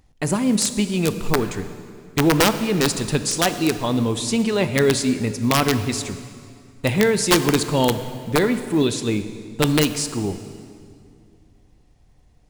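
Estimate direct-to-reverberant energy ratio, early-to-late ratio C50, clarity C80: 10.0 dB, 11.0 dB, 12.0 dB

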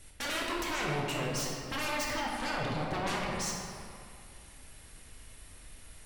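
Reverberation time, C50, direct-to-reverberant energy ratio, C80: 2.5 s, −0.5 dB, −3.0 dB, 1.0 dB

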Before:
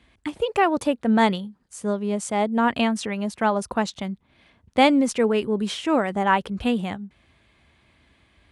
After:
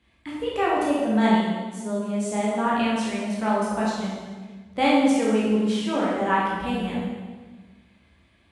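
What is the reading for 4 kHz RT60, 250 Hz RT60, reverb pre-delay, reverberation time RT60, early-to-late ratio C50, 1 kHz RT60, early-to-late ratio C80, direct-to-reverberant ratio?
1.2 s, 1.8 s, 13 ms, 1.4 s, −1.0 dB, 1.3 s, 1.5 dB, −6.5 dB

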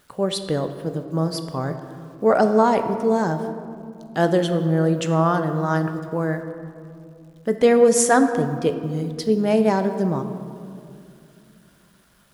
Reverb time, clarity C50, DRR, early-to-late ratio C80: 2.5 s, 9.0 dB, 7.5 dB, 10.0 dB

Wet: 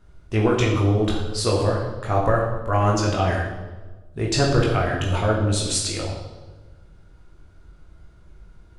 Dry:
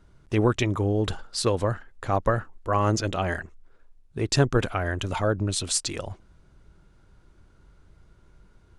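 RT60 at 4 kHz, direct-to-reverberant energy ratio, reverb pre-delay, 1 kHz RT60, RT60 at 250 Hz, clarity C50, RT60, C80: 1.0 s, −3.0 dB, 17 ms, 1.1 s, 1.4 s, 3.5 dB, 1.3 s, 5.5 dB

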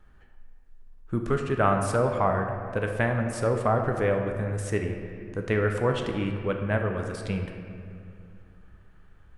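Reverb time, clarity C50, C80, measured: 2.4 s, 5.0 dB, 6.5 dB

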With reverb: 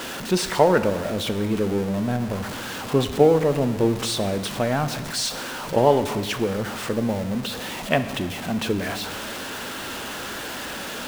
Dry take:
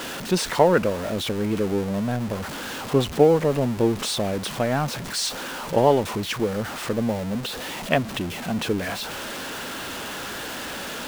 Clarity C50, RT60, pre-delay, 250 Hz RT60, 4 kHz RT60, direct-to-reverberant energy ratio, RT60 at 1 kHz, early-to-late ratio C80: 12.0 dB, 1.5 s, 4 ms, 1.7 s, 1.4 s, 9.5 dB, 1.5 s, 13.0 dB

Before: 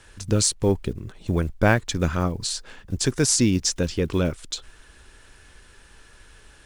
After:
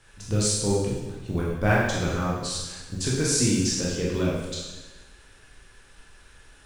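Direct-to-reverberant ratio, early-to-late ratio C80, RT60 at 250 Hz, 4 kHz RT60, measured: −5.5 dB, 3.0 dB, 1.2 s, 1.1 s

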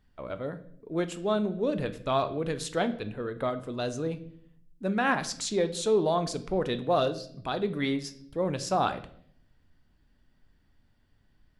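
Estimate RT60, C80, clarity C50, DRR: 0.65 s, 18.0 dB, 14.5 dB, 9.5 dB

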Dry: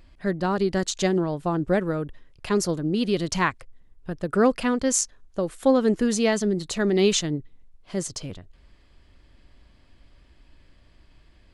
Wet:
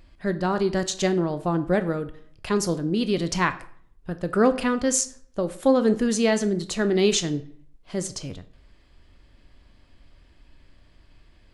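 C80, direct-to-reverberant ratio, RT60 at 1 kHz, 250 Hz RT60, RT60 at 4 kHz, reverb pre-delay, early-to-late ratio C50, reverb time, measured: 19.0 dB, 10.5 dB, 0.55 s, 0.55 s, 0.40 s, 14 ms, 15.0 dB, 0.55 s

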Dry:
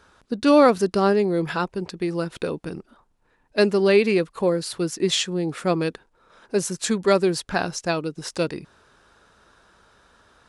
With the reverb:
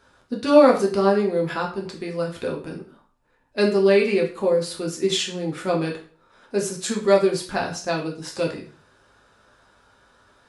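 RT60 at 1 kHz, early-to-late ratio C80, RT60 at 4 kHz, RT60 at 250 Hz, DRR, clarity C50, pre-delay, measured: 0.40 s, 13.5 dB, 0.40 s, 0.45 s, −1.5 dB, 9.0 dB, 6 ms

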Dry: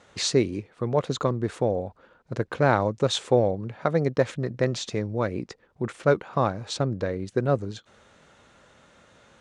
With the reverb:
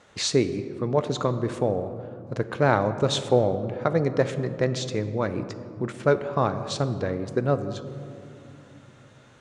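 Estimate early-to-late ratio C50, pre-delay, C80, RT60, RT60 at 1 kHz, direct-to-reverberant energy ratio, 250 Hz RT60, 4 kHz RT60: 11.5 dB, 3 ms, 12.0 dB, 2.7 s, 2.3 s, 10.0 dB, 4.2 s, 1.1 s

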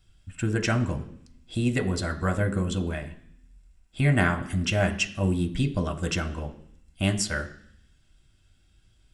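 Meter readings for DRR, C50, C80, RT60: 4.5 dB, 14.0 dB, 16.5 dB, 0.65 s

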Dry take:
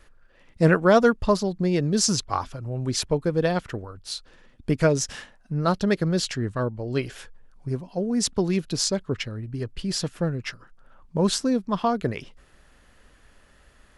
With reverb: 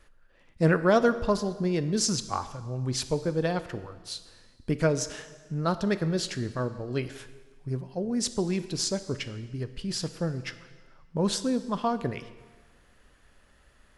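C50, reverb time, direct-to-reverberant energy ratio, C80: 13.5 dB, 1.4 s, 11.5 dB, 14.5 dB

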